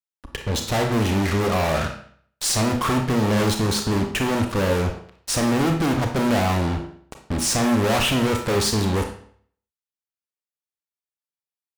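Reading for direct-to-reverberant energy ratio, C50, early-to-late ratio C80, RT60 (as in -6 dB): 3.5 dB, 6.5 dB, 11.0 dB, 0.55 s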